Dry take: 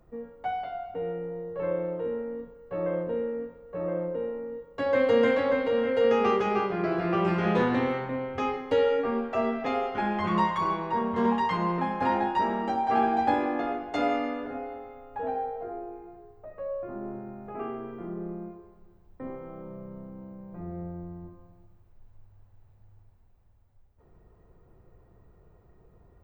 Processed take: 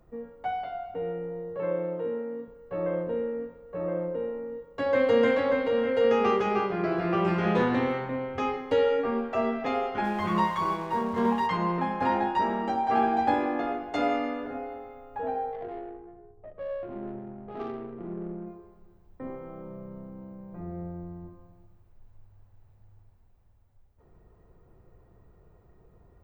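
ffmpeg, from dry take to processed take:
-filter_complex "[0:a]asettb=1/sr,asplit=3[a][b][c];[a]atrim=end=1.564[d];[b]atrim=start=1.56:end=2.48,asetpts=PTS-STARTPTS,afade=t=in:d=0.004:c=qsin,afade=t=out:st=0.916:d=0.004:c=qsin,highpass=f=110:w=0.5412,highpass=f=110:w=1.3066[e];[c]atrim=start=2.476[f];[d][e]acrossfade=d=0.004:c1=hsin:c2=qsin[g];[g][f]acrossfade=d=0.004:c1=qsin:c2=hsin,asplit=3[h][i][j];[h]afade=t=out:st=10.03:d=0.02[k];[i]aeval=exprs='sgn(val(0))*max(abs(val(0))-0.00355,0)':c=same,afade=t=in:st=10.03:d=0.02,afade=t=out:st=11.46:d=0.02[l];[j]afade=t=in:st=11.46:d=0.02[m];[k][l][m]amix=inputs=3:normalize=0,asplit=3[n][o][p];[n]afade=t=out:st=15.52:d=0.02[q];[o]adynamicsmooth=sensitivity=3.5:basefreq=590,afade=t=in:st=15.52:d=0.02,afade=t=out:st=18.45:d=0.02[r];[p]afade=t=in:st=18.45:d=0.02[s];[q][r][s]amix=inputs=3:normalize=0"

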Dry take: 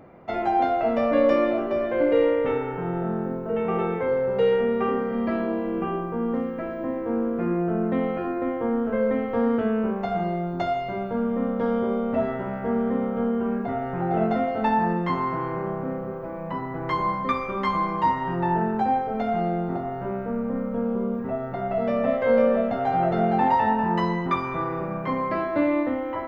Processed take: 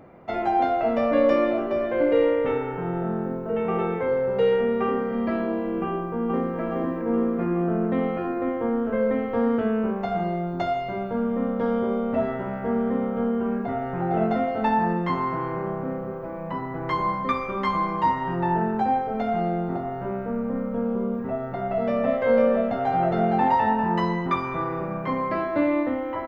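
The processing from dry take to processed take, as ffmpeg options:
-filter_complex "[0:a]asplit=2[a][b];[b]afade=t=in:st=5.87:d=0.01,afade=t=out:st=6.59:d=0.01,aecho=0:1:420|840|1260|1680|2100|2520|2940|3360|3780|4200:0.668344|0.434424|0.282375|0.183544|0.119304|0.0775473|0.0504058|0.0327637|0.0212964|0.0138427[c];[a][c]amix=inputs=2:normalize=0"

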